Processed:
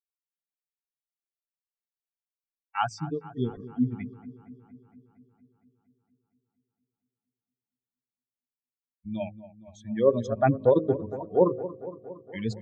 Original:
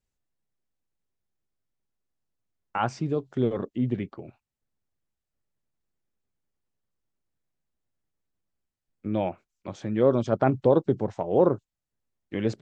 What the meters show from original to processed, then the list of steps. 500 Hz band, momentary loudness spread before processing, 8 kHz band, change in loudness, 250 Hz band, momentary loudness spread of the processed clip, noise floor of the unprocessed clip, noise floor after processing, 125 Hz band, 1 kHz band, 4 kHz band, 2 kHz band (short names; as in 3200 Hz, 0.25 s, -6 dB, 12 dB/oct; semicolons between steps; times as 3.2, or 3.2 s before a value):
-1.0 dB, 15 LU, n/a, -1.5 dB, -2.5 dB, 18 LU, under -85 dBFS, under -85 dBFS, -2.5 dB, -0.5 dB, -0.5 dB, -0.5 dB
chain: per-bin expansion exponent 3; de-hum 52.73 Hz, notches 10; on a send: dark delay 0.231 s, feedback 67%, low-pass 1500 Hz, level -15 dB; on the sum: gain +5 dB